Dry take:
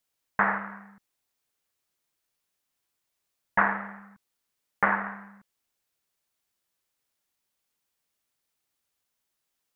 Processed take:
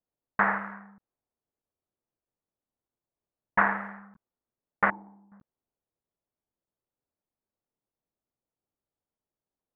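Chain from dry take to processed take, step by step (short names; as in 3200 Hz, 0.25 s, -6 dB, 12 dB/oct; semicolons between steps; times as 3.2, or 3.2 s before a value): 4.9–5.32 vocal tract filter u; low-pass opened by the level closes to 670 Hz, open at -25 dBFS; crackling interface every 0.63 s, samples 512, zero, from 0.36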